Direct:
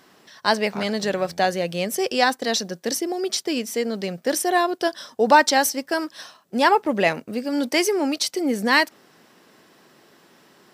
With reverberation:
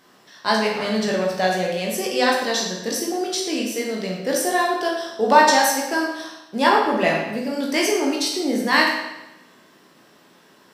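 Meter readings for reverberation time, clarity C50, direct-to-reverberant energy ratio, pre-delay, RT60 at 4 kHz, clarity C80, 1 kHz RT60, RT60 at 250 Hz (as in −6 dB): 0.95 s, 2.5 dB, −3.0 dB, 16 ms, 0.90 s, 5.0 dB, 0.95 s, 1.0 s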